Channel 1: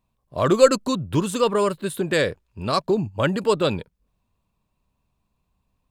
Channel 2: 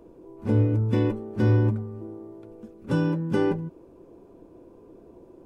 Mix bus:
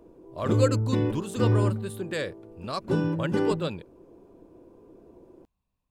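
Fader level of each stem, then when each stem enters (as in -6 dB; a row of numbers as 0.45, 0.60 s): -10.0, -2.5 dB; 0.00, 0.00 s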